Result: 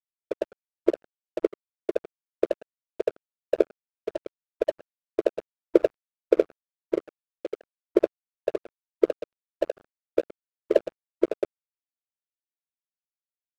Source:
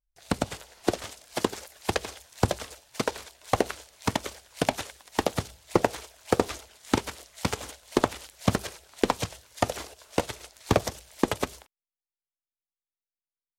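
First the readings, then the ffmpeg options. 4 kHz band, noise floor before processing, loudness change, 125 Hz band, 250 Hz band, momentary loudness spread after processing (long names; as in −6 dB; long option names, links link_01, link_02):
below −15 dB, below −85 dBFS, +1.0 dB, below −20 dB, −1.0 dB, 14 LU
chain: -af "afftfilt=real='re*between(b*sr/4096,320,660)':imag='im*between(b*sr/4096,320,660)':win_size=4096:overlap=0.75,adynamicsmooth=sensitivity=1.5:basefreq=520,aeval=exprs='sgn(val(0))*max(abs(val(0))-0.00794,0)':channel_layout=same,volume=6.5dB"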